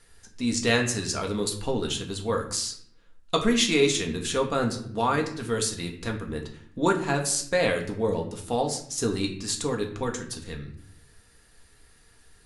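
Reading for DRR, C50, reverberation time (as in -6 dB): 1.5 dB, 9.5 dB, 0.60 s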